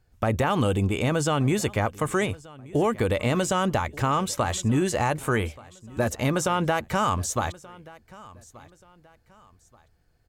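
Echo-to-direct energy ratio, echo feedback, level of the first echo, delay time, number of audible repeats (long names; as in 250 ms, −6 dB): −21.0 dB, 33%, −21.5 dB, 1,180 ms, 2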